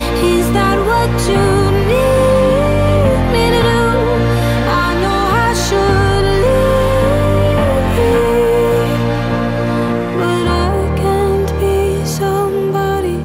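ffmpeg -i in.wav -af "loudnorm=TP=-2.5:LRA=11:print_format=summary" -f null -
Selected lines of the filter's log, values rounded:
Input Integrated:    -13.6 LUFS
Input True Peak:      -2.9 dBTP
Input LRA:             2.7 LU
Input Threshold:     -23.6 LUFS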